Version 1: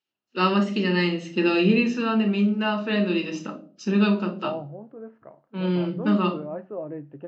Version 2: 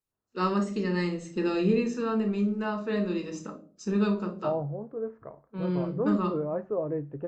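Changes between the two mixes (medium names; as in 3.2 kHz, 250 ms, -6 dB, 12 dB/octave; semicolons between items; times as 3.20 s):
first voice -8.0 dB; master: remove cabinet simulation 180–5400 Hz, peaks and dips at 450 Hz -8 dB, 1.1 kHz -5 dB, 2.9 kHz +10 dB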